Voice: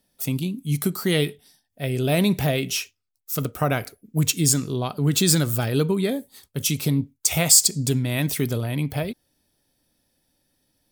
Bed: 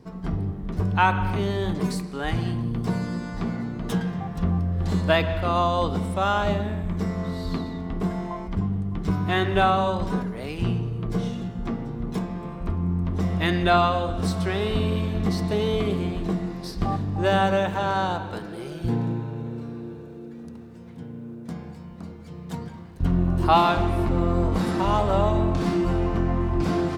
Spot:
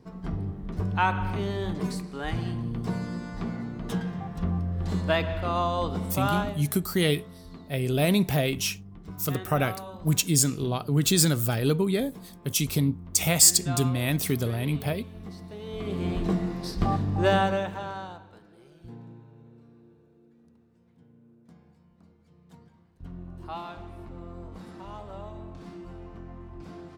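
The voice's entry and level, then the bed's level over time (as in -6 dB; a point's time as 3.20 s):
5.90 s, -2.5 dB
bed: 6.40 s -4.5 dB
6.61 s -17 dB
15.59 s -17 dB
16.12 s 0 dB
17.27 s 0 dB
18.34 s -19.5 dB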